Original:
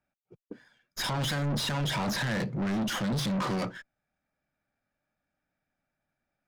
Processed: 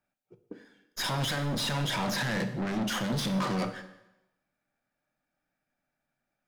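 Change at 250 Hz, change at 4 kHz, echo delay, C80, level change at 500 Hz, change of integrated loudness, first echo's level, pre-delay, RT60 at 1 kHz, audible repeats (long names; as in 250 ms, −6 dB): −0.5 dB, +0.5 dB, no echo audible, 13.5 dB, +0.5 dB, 0.0 dB, no echo audible, 6 ms, 0.95 s, no echo audible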